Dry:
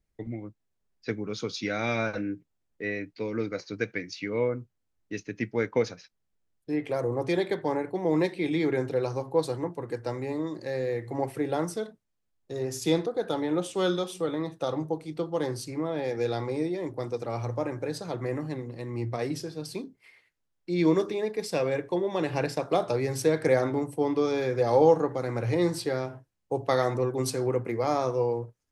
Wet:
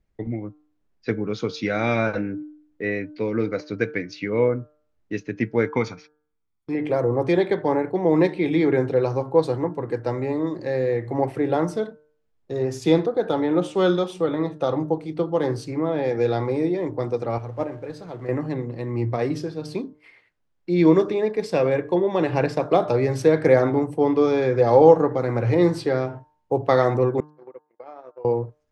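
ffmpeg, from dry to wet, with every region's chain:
-filter_complex "[0:a]asettb=1/sr,asplit=3[a][b][c];[a]atrim=end=5.664[d];[b]atrim=start=5.66:end=6.75,asetpts=PTS-STARTPTS,afade=t=in:d=0.004:c=qsin,afade=t=out:st=1.086:d=0.004:c=qsin,agate=range=-8dB:threshold=-55dB:ratio=16:release=100:detection=peak,lowshelf=f=390:g=-4.5,aecho=1:1:0.9:0.67,atrim=end_sample=48069[e];[c]atrim=start=6.746[f];[d][e]acrossfade=d=0.004:c1=hsin:c2=qsin[g];[g][f]acrossfade=d=0.004:c1=qsin:c2=hsin,asettb=1/sr,asplit=3[h][i][j];[h]atrim=end=17.384[k];[i]atrim=start=17.38:end=18.29,asetpts=PTS-STARTPTS,afade=t=in:d=0.004:c=qsin,afade=t=out:st=0.906:d=0.004:c=qsin,aeval=exprs='val(0)+0.5*0.00708*sgn(val(0))':c=same,agate=range=-10dB:threshold=-28dB:ratio=16:release=100:detection=peak[l];[j]atrim=start=18.286[m];[k][l]acrossfade=d=0.004:c1=hsin:c2=qsin[n];[n][m]acrossfade=d=0.004:c1=qsin:c2=hsin,asettb=1/sr,asplit=3[o][p][q];[o]atrim=end=27.204[r];[p]atrim=start=27.2:end=28.25,asetpts=PTS-STARTPTS,afade=t=in:d=0.004:c=qsin,afade=t=out:st=1.046:d=0.004:c=qsin,agate=range=-57dB:threshold=-25dB:ratio=16:release=100:detection=peak,acompressor=threshold=-40dB:ratio=20:attack=3.2:release=140:knee=1:detection=peak,highpass=410,lowpass=3.3k[s];[q]atrim=start=28.246[t];[r][s]acrossfade=d=0.004:c1=hsin:c2=qsin[u];[u][t]acrossfade=d=0.004:c1=qsin:c2=hsin,aemphasis=mode=reproduction:type=75fm,bandreject=f=151:t=h:w=4,bandreject=f=302:t=h:w=4,bandreject=f=453:t=h:w=4,bandreject=f=604:t=h:w=4,bandreject=f=755:t=h:w=4,bandreject=f=906:t=h:w=4,bandreject=f=1.057k:t=h:w=4,bandreject=f=1.208k:t=h:w=4,bandreject=f=1.359k:t=h:w=4,bandreject=f=1.51k:t=h:w=4,bandreject=f=1.661k:t=h:w=4,volume=6.5dB"

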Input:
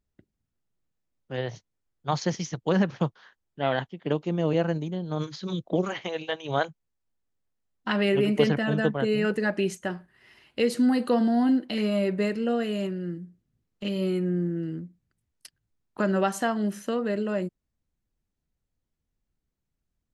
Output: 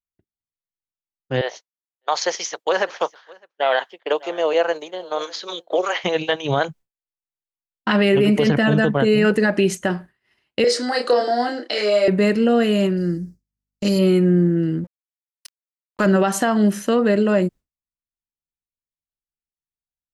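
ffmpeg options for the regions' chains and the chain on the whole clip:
-filter_complex "[0:a]asettb=1/sr,asplit=3[a][b][c];[a]atrim=end=1.414[d];[b]atrim=start=1.41:end=6.04,asetpts=PTS-STARTPTS,afade=t=in:d=0.004:c=qsin,afade=t=out:st=4.626:d=0.004:c=qsin,highpass=f=480:w=0.5412,highpass=f=480:w=1.3066,aecho=1:1:603:0.0841,atrim=end_sample=204183[e];[c]atrim=start=6.036[f];[d][e]acrossfade=d=0.004:c1=hsin:c2=qsin[g];[g][f]acrossfade=d=0.004:c1=qsin:c2=hsin,asettb=1/sr,asplit=3[h][i][j];[h]atrim=end=10.644[k];[i]atrim=start=10.64:end=12.08,asetpts=PTS-STARTPTS,afade=t=in:d=0.004:c=qsin,afade=t=out:st=1.436:d=0.004:c=qsin,highpass=f=420:w=0.5412,highpass=f=420:w=1.3066,equalizer=f=980:t=q:w=4:g=-5,equalizer=f=2.8k:t=q:w=4:g=-6,equalizer=f=5.2k:t=q:w=4:g=9,lowpass=f=8.1k:w=0.5412,lowpass=f=8.1k:w=1.3066,asplit=2[l][m];[m]adelay=29,volume=-3.5dB[n];[l][n]amix=inputs=2:normalize=0,atrim=end_sample=63504[o];[j]atrim=start=12.076[p];[k][o]acrossfade=d=0.004:c1=hsin:c2=qsin[q];[q][p]acrossfade=d=0.004:c1=qsin:c2=hsin,asettb=1/sr,asplit=3[r][s][t];[r]atrim=end=12.974[u];[s]atrim=start=12.97:end=13.99,asetpts=PTS-STARTPTS,afade=t=in:d=0.004:c=qsin,afade=t=out:st=1.016:d=0.004:c=qsin,highshelf=f=4.1k:t=q:w=3:g=8,aeval=exprs='val(0)+0.000631*(sin(2*PI*50*n/s)+sin(2*PI*2*50*n/s)/2+sin(2*PI*3*50*n/s)/3+sin(2*PI*4*50*n/s)/4+sin(2*PI*5*50*n/s)/5)':c=same[v];[t]atrim=start=13.986[w];[u][v]acrossfade=d=0.004:c1=hsin:c2=qsin[x];[x][w]acrossfade=d=0.004:c1=qsin:c2=hsin,asettb=1/sr,asplit=3[y][z][aa];[y]atrim=end=14.844[ab];[z]atrim=start=14.84:end=16.06,asetpts=PTS-STARTPTS,afade=t=in:d=0.004:c=qsin,afade=t=out:st=1.216:d=0.004:c=qsin,tiltshelf=f=1.2k:g=-3.5,aeval=exprs='sgn(val(0))*max(abs(val(0))-0.00473,0)':c=same[ac];[aa]atrim=start=16.056[ad];[ab][ac]acrossfade=d=0.004:c1=hsin:c2=qsin[ae];[ae][ad]acrossfade=d=0.004:c1=qsin:c2=hsin,agate=range=-33dB:threshold=-42dB:ratio=3:detection=peak,alimiter=level_in=18dB:limit=-1dB:release=50:level=0:latency=1,volume=-7dB"

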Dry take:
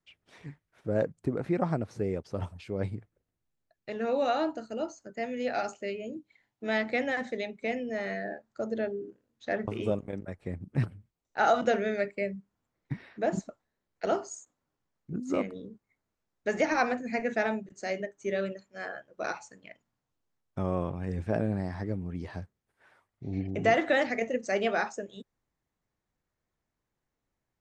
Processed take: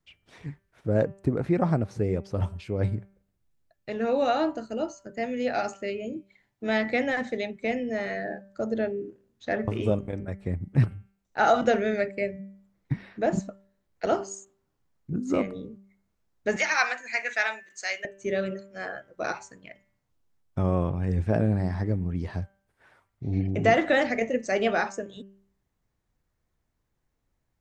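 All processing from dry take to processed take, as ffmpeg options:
-filter_complex "[0:a]asettb=1/sr,asplit=3[a][b][c];[a]atrim=end=16.564[d];[b]atrim=start=16.56:end=18.05,asetpts=PTS-STARTPTS,afade=t=in:d=0.004:c=qsin,afade=t=out:st=1.486:d=0.004:c=qsin,highpass=1.5k,acontrast=70[e];[c]atrim=start=18.046[f];[d][e]acrossfade=d=0.004:c1=hsin:c2=qsin[g];[g][f]acrossfade=d=0.004:c1=qsin:c2=hsin,lowshelf=f=120:g=9.5,bandreject=f=195.9:t=h:w=4,bandreject=f=391.8:t=h:w=4,bandreject=f=587.7:t=h:w=4,bandreject=f=783.6:t=h:w=4,bandreject=f=979.5:t=h:w=4,bandreject=f=1.1754k:t=h:w=4,bandreject=f=1.3713k:t=h:w=4,bandreject=f=1.5672k:t=h:w=4,bandreject=f=1.7631k:t=h:w=4,bandreject=f=1.959k:t=h:w=4,bandreject=f=2.1549k:t=h:w=4,bandreject=f=2.3508k:t=h:w=4,bandreject=f=2.5467k:t=h:w=4,bandreject=f=2.7426k:t=h:w=4,bandreject=f=2.9385k:t=h:w=4,bandreject=f=3.1344k:t=h:w=4,volume=3dB"

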